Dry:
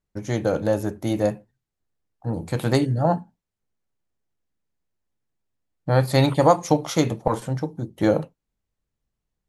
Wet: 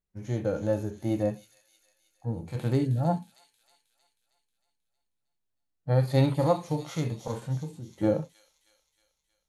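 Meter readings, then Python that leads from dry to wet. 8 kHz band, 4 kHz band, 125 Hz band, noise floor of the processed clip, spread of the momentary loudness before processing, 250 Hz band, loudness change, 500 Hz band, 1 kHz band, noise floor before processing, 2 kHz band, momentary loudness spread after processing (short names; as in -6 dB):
-12.0 dB, -11.0 dB, -3.5 dB, -80 dBFS, 12 LU, -6.0 dB, -6.0 dB, -7.0 dB, -10.5 dB, -83 dBFS, -11.5 dB, 12 LU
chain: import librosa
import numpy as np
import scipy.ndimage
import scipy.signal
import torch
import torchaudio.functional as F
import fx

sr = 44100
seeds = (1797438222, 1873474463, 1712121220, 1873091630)

y = fx.hpss(x, sr, part='percussive', gain_db=-17)
y = fx.echo_wet_highpass(y, sr, ms=315, feedback_pct=55, hz=4400.0, wet_db=-4.5)
y = y * librosa.db_to_amplitude(-3.0)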